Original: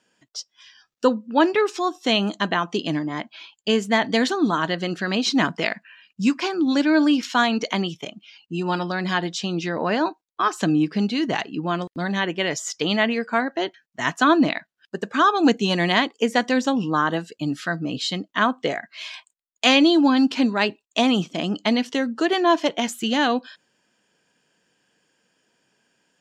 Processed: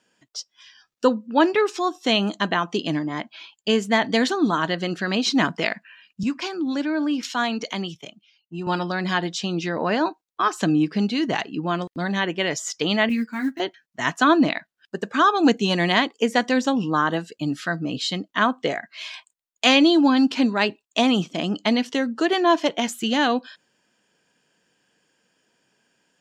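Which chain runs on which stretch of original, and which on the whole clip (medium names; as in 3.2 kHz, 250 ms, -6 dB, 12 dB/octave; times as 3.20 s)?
6.23–8.67 s: compression 2:1, threshold -24 dBFS + three bands expanded up and down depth 100%
13.09–13.60 s: FFT filter 120 Hz 0 dB, 180 Hz -5 dB, 260 Hz +8 dB, 530 Hz -17 dB, 1.1 kHz -9 dB, 2.2 kHz 0 dB, 3.1 kHz -6 dB, 5.6 kHz +3 dB, 11 kHz -5 dB + short-mantissa float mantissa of 4-bit + three-phase chorus
whole clip: none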